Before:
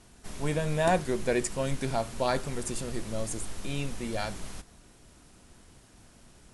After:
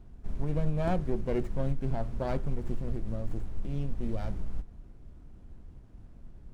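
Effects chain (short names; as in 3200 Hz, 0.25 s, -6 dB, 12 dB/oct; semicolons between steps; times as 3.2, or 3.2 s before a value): tilt -4 dB/oct; compressor 2.5:1, threshold -12 dBFS, peak gain reduction 6.5 dB; running maximum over 9 samples; gain -7.5 dB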